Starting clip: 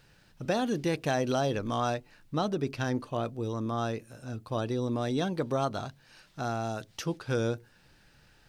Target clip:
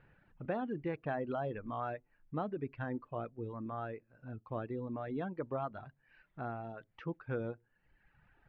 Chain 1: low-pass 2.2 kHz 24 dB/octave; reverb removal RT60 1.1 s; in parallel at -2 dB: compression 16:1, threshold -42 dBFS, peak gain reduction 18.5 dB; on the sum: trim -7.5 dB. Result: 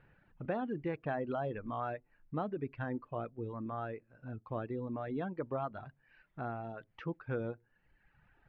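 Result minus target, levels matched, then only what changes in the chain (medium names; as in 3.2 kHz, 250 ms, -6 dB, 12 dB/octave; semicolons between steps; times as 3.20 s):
compression: peak gain reduction -10.5 dB
change: compression 16:1, threshold -53 dBFS, peak gain reduction 28.5 dB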